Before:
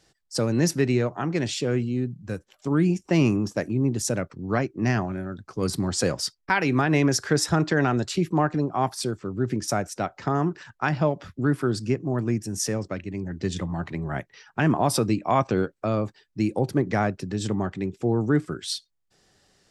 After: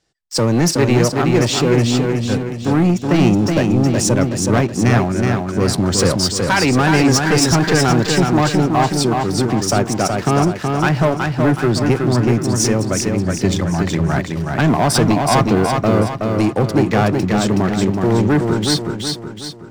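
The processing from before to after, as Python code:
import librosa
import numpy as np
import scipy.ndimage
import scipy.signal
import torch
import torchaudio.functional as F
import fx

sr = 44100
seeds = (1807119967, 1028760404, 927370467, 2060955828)

p1 = scipy.signal.sosfilt(scipy.signal.butter(2, 9800.0, 'lowpass', fs=sr, output='sos'), x)
p2 = fx.leveller(p1, sr, passes=3)
y = p2 + fx.echo_feedback(p2, sr, ms=372, feedback_pct=45, wet_db=-4.0, dry=0)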